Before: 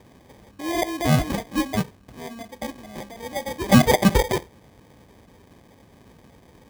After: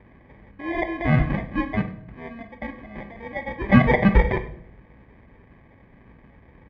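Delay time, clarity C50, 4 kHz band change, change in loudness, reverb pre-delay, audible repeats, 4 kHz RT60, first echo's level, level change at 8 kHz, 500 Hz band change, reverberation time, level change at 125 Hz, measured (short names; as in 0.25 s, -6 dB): 98 ms, 12.5 dB, -12.0 dB, +0.5 dB, 3 ms, 1, 0.45 s, -19.0 dB, under -30 dB, -2.0 dB, 0.70 s, +1.5 dB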